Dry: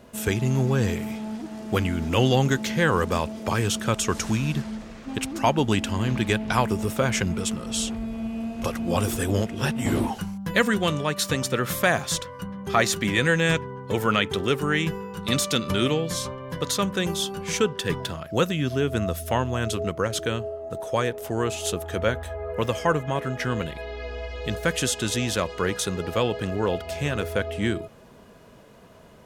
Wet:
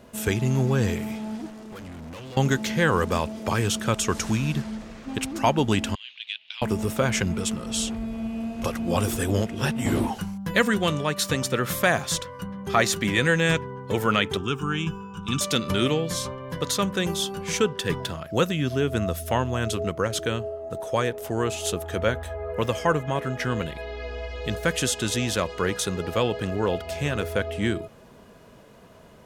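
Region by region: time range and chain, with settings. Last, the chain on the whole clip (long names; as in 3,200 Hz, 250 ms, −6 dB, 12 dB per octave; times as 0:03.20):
0:01.50–0:02.37: mains-hum notches 50/100/150 Hz + downward compressor 4 to 1, threshold −25 dBFS + tube saturation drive 37 dB, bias 0.65
0:05.95–0:06.62: flat-topped band-pass 3,200 Hz, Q 2.4 + saturating transformer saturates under 750 Hz
0:14.37–0:15.41: high-shelf EQ 6,000 Hz −6 dB + phaser with its sweep stopped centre 2,900 Hz, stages 8
whole clip: no processing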